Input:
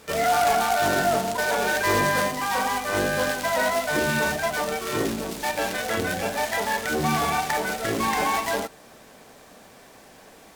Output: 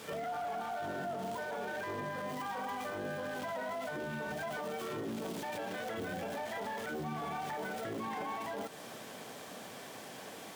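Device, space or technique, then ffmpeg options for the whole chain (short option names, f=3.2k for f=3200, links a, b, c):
broadcast voice chain: -af "highpass=f=100:w=0.5412,highpass=f=100:w=1.3066,deesser=0.8,acompressor=threshold=-33dB:ratio=6,equalizer=f=3.2k:t=o:w=0.22:g=5,alimiter=level_in=9dB:limit=-24dB:level=0:latency=1:release=15,volume=-9dB,volume=1.5dB"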